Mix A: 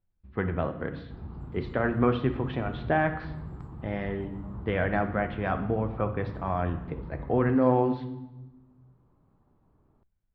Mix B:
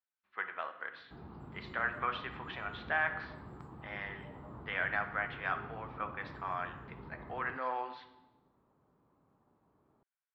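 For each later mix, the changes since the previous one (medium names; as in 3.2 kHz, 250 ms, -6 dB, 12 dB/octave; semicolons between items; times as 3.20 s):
speech: add Chebyshev band-pass 1.3–9.9 kHz, order 2; background: add high-pass 340 Hz 6 dB/octave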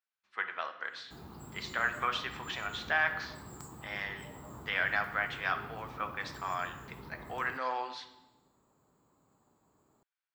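master: remove distance through air 410 m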